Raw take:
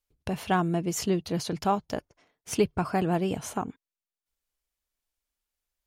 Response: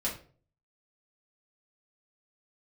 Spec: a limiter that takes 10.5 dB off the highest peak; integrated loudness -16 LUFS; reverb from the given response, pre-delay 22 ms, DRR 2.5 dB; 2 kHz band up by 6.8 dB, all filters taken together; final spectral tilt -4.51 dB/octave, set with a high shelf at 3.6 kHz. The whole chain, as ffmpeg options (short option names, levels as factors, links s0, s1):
-filter_complex "[0:a]equalizer=f=2000:t=o:g=8,highshelf=f=3600:g=4.5,alimiter=limit=0.1:level=0:latency=1,asplit=2[s0][s1];[1:a]atrim=start_sample=2205,adelay=22[s2];[s1][s2]afir=irnorm=-1:irlink=0,volume=0.422[s3];[s0][s3]amix=inputs=2:normalize=0,volume=4.47"